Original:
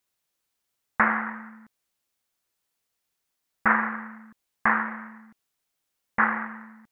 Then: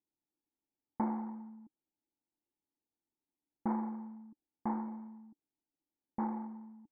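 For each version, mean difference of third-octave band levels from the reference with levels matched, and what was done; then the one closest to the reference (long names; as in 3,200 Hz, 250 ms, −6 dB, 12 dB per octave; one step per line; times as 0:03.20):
6.0 dB: formant resonators in series u
level +5 dB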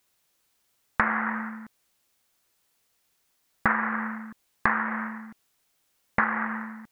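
4.5 dB: downward compressor 5 to 1, threshold −30 dBFS, peak gain reduction 13.5 dB
level +8.5 dB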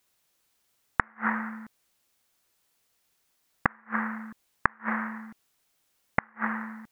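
9.0 dB: gate with flip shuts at −13 dBFS, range −40 dB
level +7.5 dB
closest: second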